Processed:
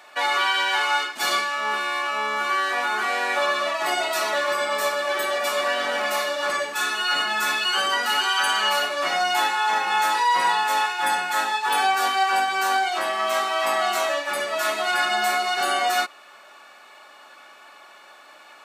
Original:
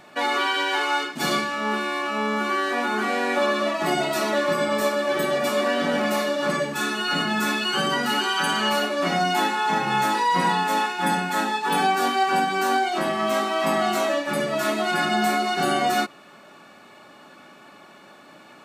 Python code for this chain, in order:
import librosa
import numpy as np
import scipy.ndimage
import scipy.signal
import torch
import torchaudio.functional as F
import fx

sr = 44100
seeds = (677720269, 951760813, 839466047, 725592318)

y = scipy.signal.sosfilt(scipy.signal.butter(2, 720.0, 'highpass', fs=sr, output='sos'), x)
y = y * 10.0 ** (2.5 / 20.0)